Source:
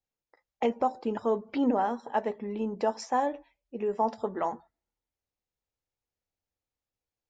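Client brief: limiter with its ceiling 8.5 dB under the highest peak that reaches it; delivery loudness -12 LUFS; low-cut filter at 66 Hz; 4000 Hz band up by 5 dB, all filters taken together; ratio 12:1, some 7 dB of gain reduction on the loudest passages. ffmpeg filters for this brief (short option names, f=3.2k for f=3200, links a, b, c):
-af "highpass=66,equalizer=f=4k:t=o:g=7.5,acompressor=threshold=-28dB:ratio=12,volume=25.5dB,alimiter=limit=-1dB:level=0:latency=1"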